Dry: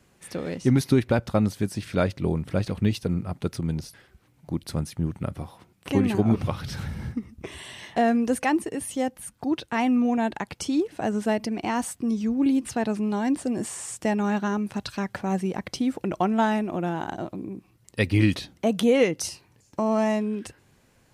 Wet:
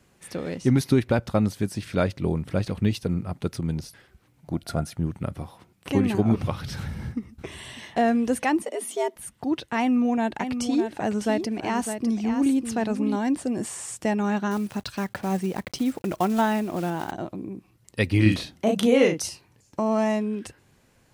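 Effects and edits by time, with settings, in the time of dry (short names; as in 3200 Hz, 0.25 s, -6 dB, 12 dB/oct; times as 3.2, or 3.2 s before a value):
4.52–4.97 small resonant body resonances 680/1400 Hz, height 16 dB
6.78–7.95 echo throw 0.6 s, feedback 45%, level -18 dB
8.63–9.16 frequency shift +140 Hz
9.79–13.16 echo 0.604 s -8 dB
14.51–17.13 block floating point 5-bit
18.22–19.19 doubler 37 ms -3.5 dB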